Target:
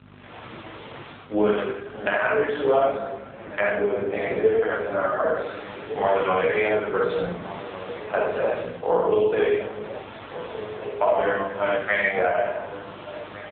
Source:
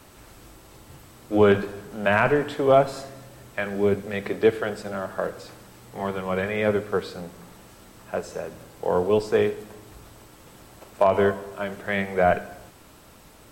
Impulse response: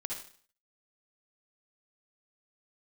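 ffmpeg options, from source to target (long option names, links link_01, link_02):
-filter_complex "[1:a]atrim=start_sample=2205[link_01];[0:a][link_01]afir=irnorm=-1:irlink=0,dynaudnorm=framelen=180:gausssize=3:maxgain=16dB,highpass=frequency=490:poles=1,acompressor=threshold=-17dB:ratio=5,asettb=1/sr,asplit=3[link_02][link_03][link_04];[link_02]atrim=end=2.964[link_05];[link_03]atrim=start=2.96:end=5.35,asetpts=PTS-STARTPTS,afade=type=in:duration=0.004:curve=qsin,afade=type=out:start_time=2.386:duration=0.004:curve=qsin,lowpass=frequency=1600:poles=1[link_06];[link_04]atrim=start=5.346[link_07];[link_05][link_06]acrossfade=duration=0.004:curve1=hsin:curve2=qsin[link_08];[link_08][link_07]acrossfade=duration=0.004:curve1=qsin:curve2=hsin,flanger=delay=16:depth=4:speed=0.44,asplit=2[link_09][link_10];[link_10]adelay=44,volume=-10dB[link_11];[link_09][link_11]amix=inputs=2:normalize=0,asplit=2[link_12][link_13];[link_13]adelay=1458,volume=-12dB,highshelf=frequency=4000:gain=-32.8[link_14];[link_12][link_14]amix=inputs=2:normalize=0,aeval=exprs='val(0)+0.00891*(sin(2*PI*50*n/s)+sin(2*PI*2*50*n/s)/2+sin(2*PI*3*50*n/s)/3+sin(2*PI*4*50*n/s)/4+sin(2*PI*5*50*n/s)/5)':channel_layout=same,volume=3.5dB" -ar 8000 -c:a libopencore_amrnb -b:a 5900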